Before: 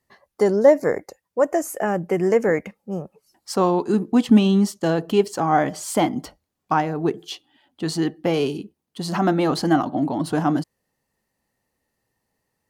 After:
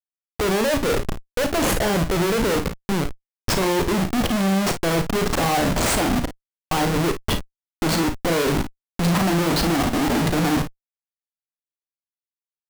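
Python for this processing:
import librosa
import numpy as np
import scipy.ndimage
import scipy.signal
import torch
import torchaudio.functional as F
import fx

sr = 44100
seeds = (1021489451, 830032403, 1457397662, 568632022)

y = fx.schmitt(x, sr, flips_db=-29.0)
y = fx.room_early_taps(y, sr, ms=(36, 53), db=(-9.5, -11.0))
y = y * 10.0 ** (1.5 / 20.0)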